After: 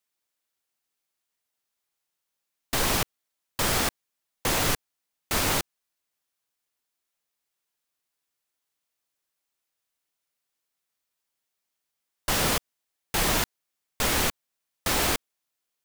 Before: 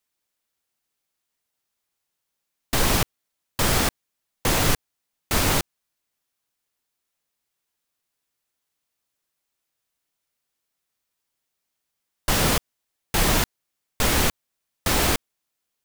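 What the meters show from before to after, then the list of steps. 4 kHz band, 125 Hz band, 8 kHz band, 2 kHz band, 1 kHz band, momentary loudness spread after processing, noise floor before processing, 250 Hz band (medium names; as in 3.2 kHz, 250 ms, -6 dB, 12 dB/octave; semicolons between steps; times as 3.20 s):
-2.5 dB, -7.0 dB, -2.5 dB, -2.5 dB, -3.0 dB, 9 LU, -81 dBFS, -5.5 dB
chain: bass shelf 260 Hz -5.5 dB; trim -2.5 dB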